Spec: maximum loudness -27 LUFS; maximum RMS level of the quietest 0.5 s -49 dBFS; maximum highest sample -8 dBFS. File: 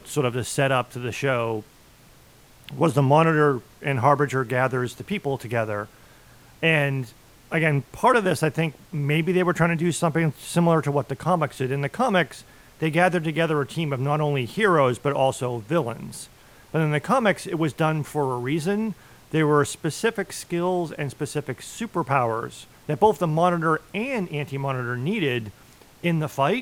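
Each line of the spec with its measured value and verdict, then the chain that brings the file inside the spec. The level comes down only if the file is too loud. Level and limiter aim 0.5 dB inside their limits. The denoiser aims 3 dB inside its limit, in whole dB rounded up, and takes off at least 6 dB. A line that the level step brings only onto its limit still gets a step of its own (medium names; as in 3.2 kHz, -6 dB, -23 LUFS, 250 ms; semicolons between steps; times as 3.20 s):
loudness -23.5 LUFS: fail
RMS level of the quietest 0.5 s -52 dBFS: pass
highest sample -5.0 dBFS: fail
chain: trim -4 dB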